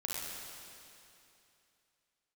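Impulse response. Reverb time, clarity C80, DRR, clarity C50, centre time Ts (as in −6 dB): 2.8 s, −1.0 dB, −4.5 dB, −3.5 dB, 172 ms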